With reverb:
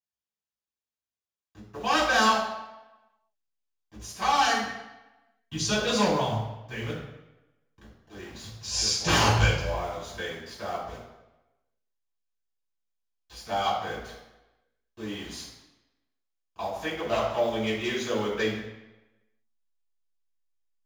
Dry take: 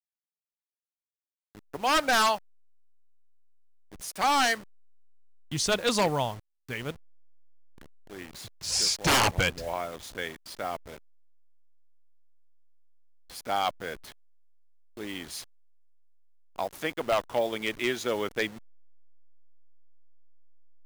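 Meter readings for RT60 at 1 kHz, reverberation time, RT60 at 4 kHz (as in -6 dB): 1.0 s, 1.0 s, 0.80 s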